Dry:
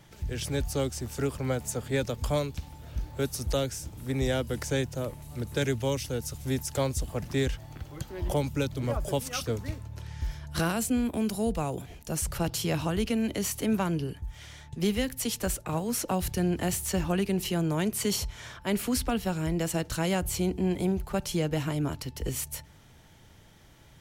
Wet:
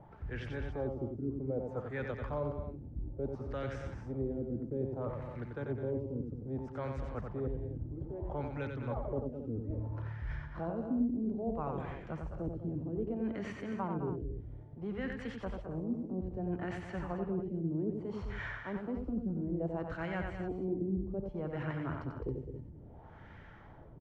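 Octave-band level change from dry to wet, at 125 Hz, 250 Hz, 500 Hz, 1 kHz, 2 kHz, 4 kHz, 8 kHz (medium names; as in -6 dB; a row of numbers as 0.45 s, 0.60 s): -7.5 dB, -7.0 dB, -7.0 dB, -8.0 dB, -8.5 dB, under -20 dB, under -35 dB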